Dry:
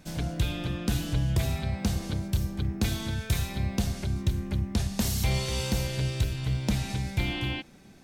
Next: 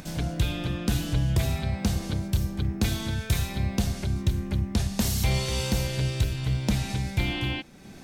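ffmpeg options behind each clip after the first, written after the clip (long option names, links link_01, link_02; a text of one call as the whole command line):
ffmpeg -i in.wav -af "acompressor=mode=upward:threshold=-38dB:ratio=2.5,volume=2dB" out.wav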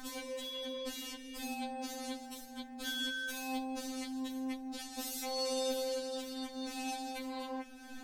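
ffmpeg -i in.wav -af "equalizer=frequency=83:width_type=o:width=2.4:gain=-2.5,alimiter=level_in=1dB:limit=-24dB:level=0:latency=1:release=145,volume=-1dB,afftfilt=real='re*3.46*eq(mod(b,12),0)':imag='im*3.46*eq(mod(b,12),0)':win_size=2048:overlap=0.75" out.wav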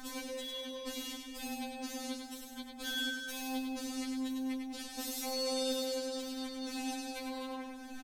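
ffmpeg -i in.wav -af "aecho=1:1:100|200|300|400|500:0.562|0.214|0.0812|0.0309|0.0117" out.wav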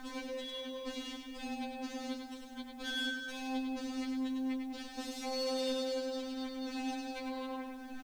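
ffmpeg -i in.wav -af "aeval=exprs='0.0355*(abs(mod(val(0)/0.0355+3,4)-2)-1)':channel_layout=same,adynamicsmooth=sensitivity=6.5:basefreq=4000,acrusher=bits=10:mix=0:aa=0.000001,volume=1dB" out.wav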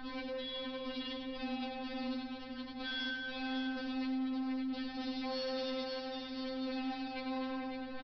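ffmpeg -i in.wav -af "aeval=exprs='val(0)+0.000562*(sin(2*PI*60*n/s)+sin(2*PI*2*60*n/s)/2+sin(2*PI*3*60*n/s)/3+sin(2*PI*4*60*n/s)/4+sin(2*PI*5*60*n/s)/5)':channel_layout=same,aresample=11025,asoftclip=type=tanh:threshold=-38.5dB,aresample=44100,aecho=1:1:558:0.473,volume=3dB" out.wav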